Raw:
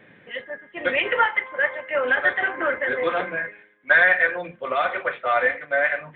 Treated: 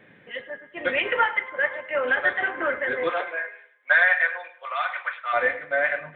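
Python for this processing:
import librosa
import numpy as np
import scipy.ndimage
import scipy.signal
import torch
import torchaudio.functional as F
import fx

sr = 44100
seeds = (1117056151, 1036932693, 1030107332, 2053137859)

y = fx.highpass(x, sr, hz=fx.line((3.09, 420.0), (5.32, 1000.0)), slope=24, at=(3.09, 5.32), fade=0.02)
y = fx.echo_feedback(y, sr, ms=104, feedback_pct=34, wet_db=-17.0)
y = y * librosa.db_to_amplitude(-2.0)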